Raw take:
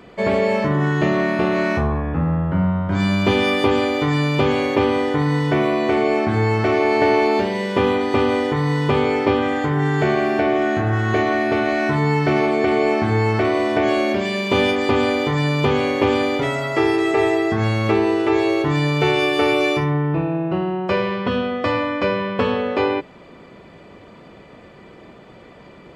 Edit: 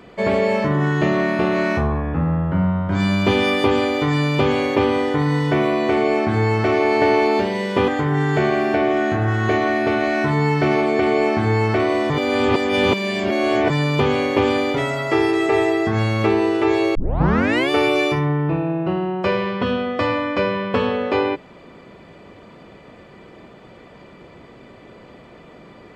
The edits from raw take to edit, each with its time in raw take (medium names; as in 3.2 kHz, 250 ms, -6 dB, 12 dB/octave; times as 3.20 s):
7.88–9.53 s: delete
13.75–15.35 s: reverse
18.60 s: tape start 0.75 s